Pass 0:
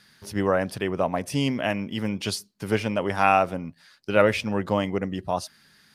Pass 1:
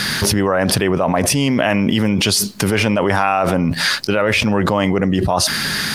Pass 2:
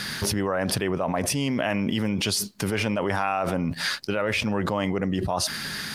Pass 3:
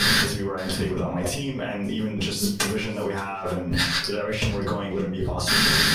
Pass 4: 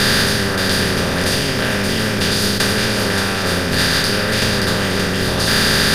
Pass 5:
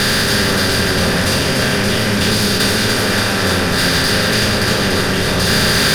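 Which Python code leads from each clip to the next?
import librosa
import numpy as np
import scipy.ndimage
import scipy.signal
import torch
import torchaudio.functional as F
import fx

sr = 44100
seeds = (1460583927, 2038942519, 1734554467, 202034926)

y1 = fx.dynamic_eq(x, sr, hz=1200.0, q=0.75, threshold_db=-31.0, ratio=4.0, max_db=4)
y1 = fx.env_flatten(y1, sr, amount_pct=100)
y1 = y1 * librosa.db_to_amplitude(-3.0)
y2 = fx.upward_expand(y1, sr, threshold_db=-37.0, expansion=1.5)
y2 = y2 * librosa.db_to_amplitude(-8.5)
y3 = fx.over_compress(y2, sr, threshold_db=-31.0, ratio=-0.5)
y3 = y3 + 10.0 ** (-21.0 / 20.0) * np.pad(y3, (int(576 * sr / 1000.0), 0))[:len(y3)]
y3 = fx.room_shoebox(y3, sr, seeds[0], volume_m3=34.0, walls='mixed', distance_m=1.2)
y4 = fx.bin_compress(y3, sr, power=0.2)
y4 = y4 * librosa.db_to_amplitude(-1.0)
y5 = 10.0 ** (-13.0 / 20.0) * np.tanh(y4 / 10.0 ** (-13.0 / 20.0))
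y5 = y5 + 10.0 ** (-4.0 / 20.0) * np.pad(y5, (int(290 * sr / 1000.0), 0))[:len(y5)]
y5 = y5 * librosa.db_to_amplitude(3.0)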